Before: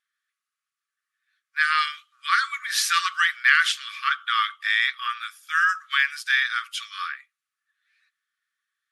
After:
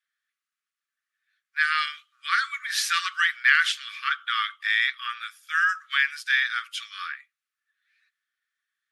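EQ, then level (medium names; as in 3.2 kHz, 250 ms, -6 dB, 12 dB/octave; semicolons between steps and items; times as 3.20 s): high-pass 1.3 kHz 24 dB/octave; treble shelf 4.5 kHz -5 dB; 0.0 dB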